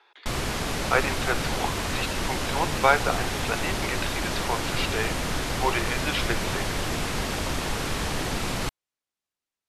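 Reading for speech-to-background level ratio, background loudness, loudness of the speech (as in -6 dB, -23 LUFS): -0.5 dB, -28.5 LUFS, -29.0 LUFS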